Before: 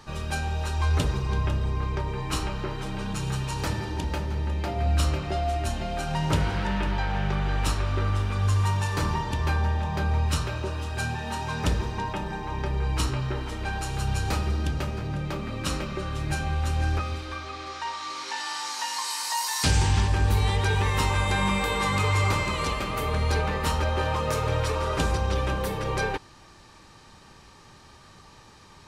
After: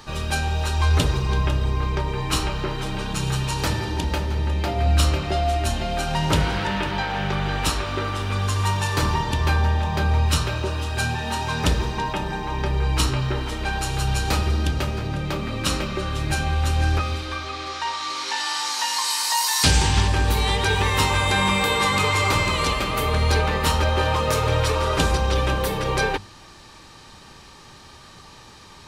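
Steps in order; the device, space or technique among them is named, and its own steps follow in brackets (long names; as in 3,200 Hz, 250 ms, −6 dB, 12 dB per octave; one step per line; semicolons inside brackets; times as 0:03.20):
presence and air boost (parametric band 3,600 Hz +3.5 dB 1 octave; high-shelf EQ 12,000 Hz +6 dB)
mains-hum notches 50/100/150/200 Hz
level +5 dB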